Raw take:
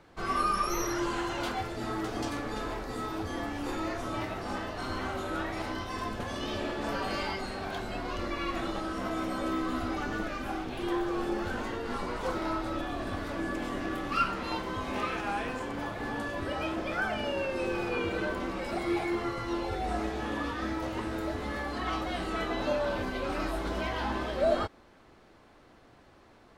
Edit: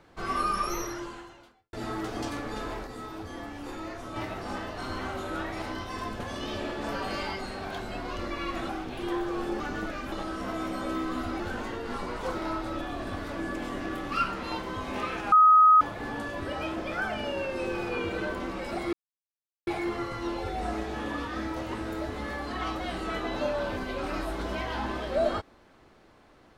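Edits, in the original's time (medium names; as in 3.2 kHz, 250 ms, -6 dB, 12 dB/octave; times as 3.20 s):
0.69–1.73 s: fade out quadratic
2.87–4.16 s: gain -4.5 dB
8.69–9.97 s: swap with 10.49–11.40 s
15.32–15.81 s: bleep 1.26 kHz -13.5 dBFS
18.93 s: insert silence 0.74 s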